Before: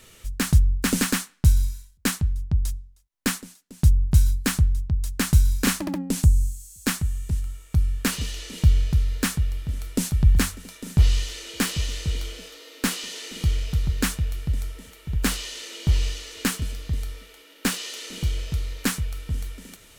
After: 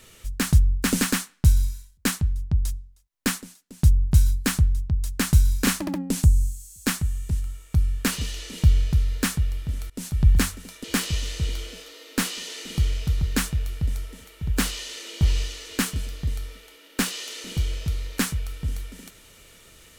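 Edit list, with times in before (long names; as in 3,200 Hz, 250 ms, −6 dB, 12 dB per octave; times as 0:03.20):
0:09.90–0:10.25: fade in, from −23 dB
0:10.84–0:11.50: remove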